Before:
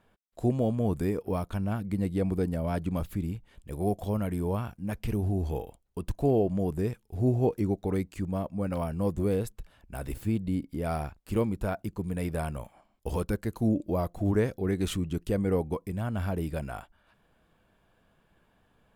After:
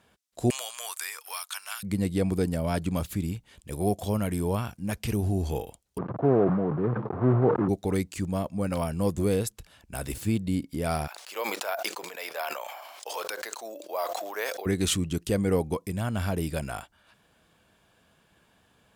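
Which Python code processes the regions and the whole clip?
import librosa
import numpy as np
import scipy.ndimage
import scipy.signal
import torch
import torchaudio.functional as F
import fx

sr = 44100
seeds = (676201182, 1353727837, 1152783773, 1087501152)

y = fx.chain(x, sr, fx.highpass(hz=1100.0, slope=24),
    fx.high_shelf(hz=2900.0, db=8.0),
    fx.band_squash(depth_pct=100), at=(0.5, 1.83))
y = fx.chain(y, sr, fx.block_float(bits=3),
    fx.ellip_bandpass(low_hz=120.0, high_hz=1200.0, order=3, stop_db=70),
    fx.sustainer(db_per_s=29.0), at=(5.98, 7.69))
y = fx.chain(y, sr, fx.highpass(hz=590.0, slope=24),
    fx.resample_bad(factor=3, down='filtered', up='hold'),
    fx.sustainer(db_per_s=33.0), at=(11.07, 14.66))
y = scipy.signal.sosfilt(scipy.signal.butter(2, 59.0, 'highpass', fs=sr, output='sos'), y)
y = fx.peak_eq(y, sr, hz=6700.0, db=10.5, octaves=2.5)
y = y * 10.0 ** (2.0 / 20.0)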